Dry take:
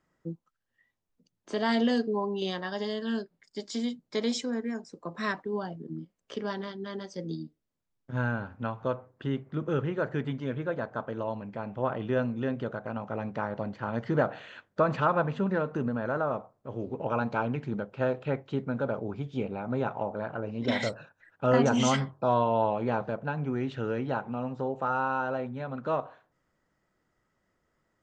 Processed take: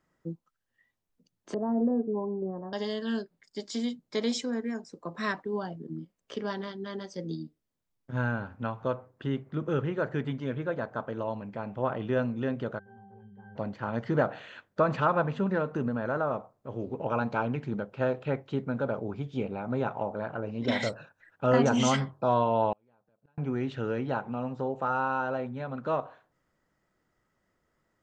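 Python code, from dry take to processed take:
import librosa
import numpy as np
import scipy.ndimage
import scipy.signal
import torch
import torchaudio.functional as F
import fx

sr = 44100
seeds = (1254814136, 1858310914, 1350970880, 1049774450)

y = fx.bessel_lowpass(x, sr, hz=620.0, order=8, at=(1.54, 2.73))
y = fx.octave_resonator(y, sr, note='G', decay_s=0.51, at=(12.78, 13.55), fade=0.02)
y = fx.gate_flip(y, sr, shuts_db=-28.0, range_db=-39, at=(22.72, 23.38))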